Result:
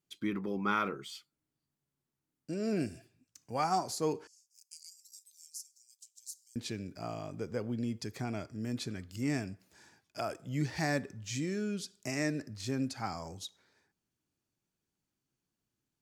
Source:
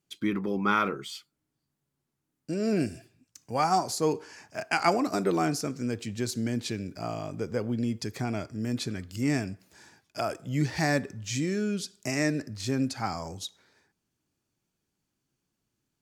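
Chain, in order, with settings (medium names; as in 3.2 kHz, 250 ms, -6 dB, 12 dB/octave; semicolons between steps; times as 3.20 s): 4.27–6.56 s: inverse Chebyshev high-pass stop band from 1.1 kHz, stop band 80 dB; trim -6 dB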